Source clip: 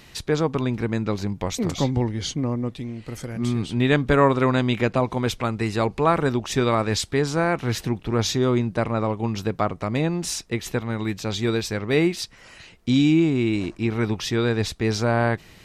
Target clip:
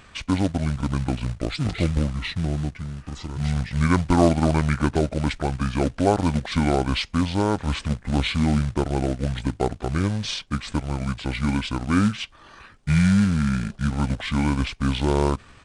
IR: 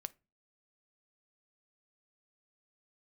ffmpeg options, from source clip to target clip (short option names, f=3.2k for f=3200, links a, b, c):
-af "asetrate=26990,aresample=44100,atempo=1.63392,acrusher=bits=4:mode=log:mix=0:aa=0.000001,aresample=22050,aresample=44100"